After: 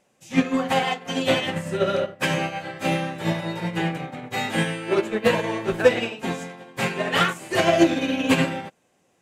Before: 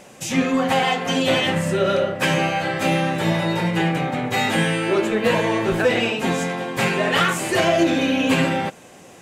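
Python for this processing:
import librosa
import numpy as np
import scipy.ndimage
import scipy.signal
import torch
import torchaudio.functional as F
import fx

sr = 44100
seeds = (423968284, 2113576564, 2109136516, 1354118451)

y = fx.upward_expand(x, sr, threshold_db=-30.0, expansion=2.5)
y = F.gain(torch.from_numpy(y), 4.0).numpy()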